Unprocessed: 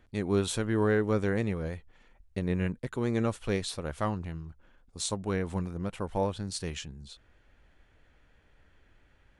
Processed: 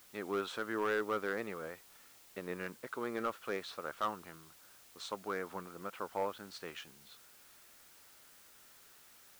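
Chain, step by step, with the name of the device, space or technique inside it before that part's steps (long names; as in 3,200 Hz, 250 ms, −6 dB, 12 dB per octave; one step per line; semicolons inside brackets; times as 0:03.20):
drive-through speaker (band-pass filter 360–3,600 Hz; parametric band 1,300 Hz +10 dB 0.55 octaves; hard clipping −21 dBFS, distortion −16 dB; white noise bed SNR 19 dB)
level −5.5 dB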